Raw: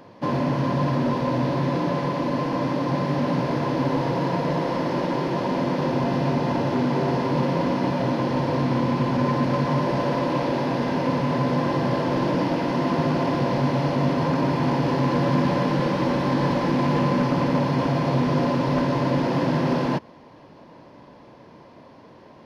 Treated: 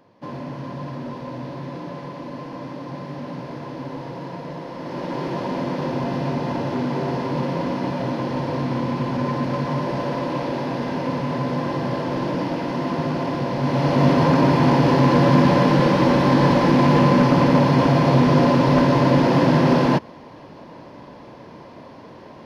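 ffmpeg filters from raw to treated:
ffmpeg -i in.wav -af "volume=6dB,afade=type=in:start_time=4.76:duration=0.49:silence=0.421697,afade=type=in:start_time=13.57:duration=0.5:silence=0.421697" out.wav

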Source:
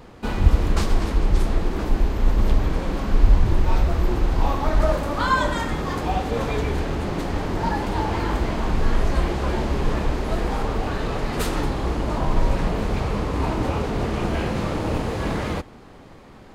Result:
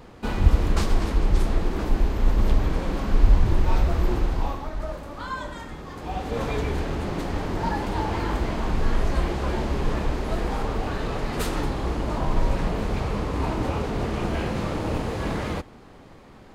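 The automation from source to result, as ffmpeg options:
ffmpeg -i in.wav -af "volume=8dB,afade=type=out:start_time=4.14:duration=0.56:silence=0.298538,afade=type=in:start_time=5.95:duration=0.49:silence=0.334965" out.wav

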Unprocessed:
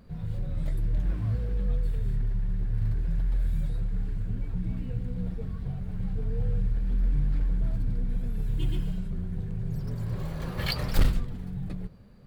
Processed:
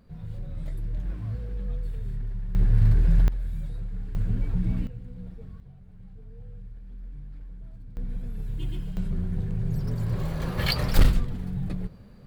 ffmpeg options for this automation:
ffmpeg -i in.wav -af "asetnsamples=nb_out_samples=441:pad=0,asendcmd='2.55 volume volume 8.5dB;3.28 volume volume -4dB;4.15 volume volume 5dB;4.87 volume volume -8dB;5.6 volume volume -15.5dB;7.97 volume volume -3.5dB;8.97 volume volume 4dB',volume=-4dB" out.wav

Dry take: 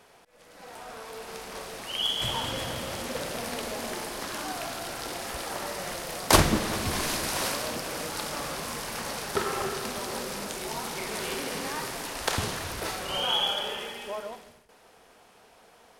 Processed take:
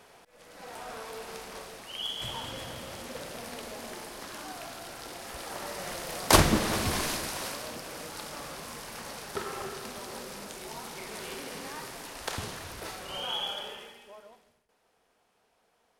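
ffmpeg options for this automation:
ffmpeg -i in.wav -af "volume=9dB,afade=type=out:start_time=0.94:duration=0.91:silence=0.398107,afade=type=in:start_time=5.2:duration=1.58:silence=0.398107,afade=type=out:start_time=6.78:duration=0.61:silence=0.398107,afade=type=out:start_time=13.61:duration=0.45:silence=0.421697" out.wav

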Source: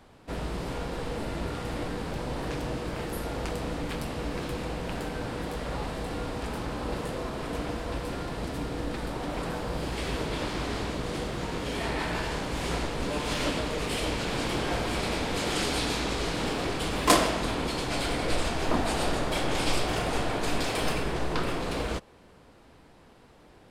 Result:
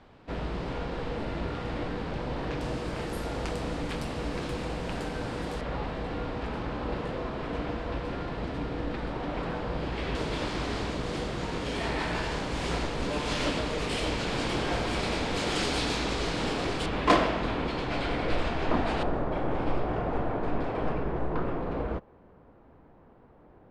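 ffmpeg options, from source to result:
ffmpeg -i in.wav -af "asetnsamples=nb_out_samples=441:pad=0,asendcmd='2.61 lowpass f 8400;5.61 lowpass f 3400;10.15 lowpass f 7300;16.86 lowpass f 3000;19.03 lowpass f 1200',lowpass=4000" out.wav

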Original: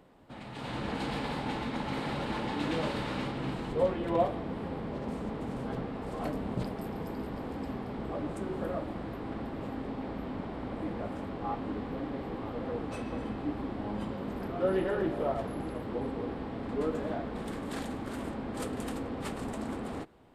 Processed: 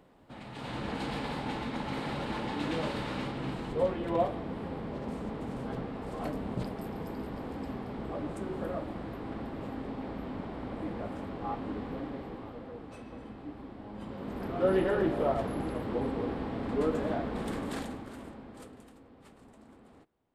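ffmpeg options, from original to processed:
ffmpeg -i in.wav -af "volume=10.5dB,afade=type=out:start_time=11.93:duration=0.76:silence=0.398107,afade=type=in:start_time=13.92:duration=0.79:silence=0.266073,afade=type=out:start_time=17.59:duration=0.48:silence=0.354813,afade=type=out:start_time=18.07:duration=0.83:silence=0.237137" out.wav

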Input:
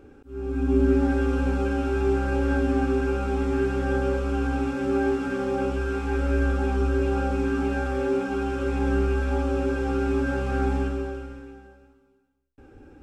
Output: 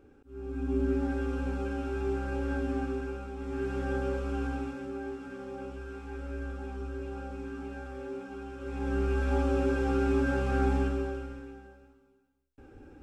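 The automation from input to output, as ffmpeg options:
ffmpeg -i in.wav -af "volume=11.5dB,afade=type=out:start_time=2.76:duration=0.59:silence=0.473151,afade=type=in:start_time=3.35:duration=0.42:silence=0.398107,afade=type=out:start_time=4.44:duration=0.49:silence=0.421697,afade=type=in:start_time=8.59:duration=0.78:silence=0.251189" out.wav

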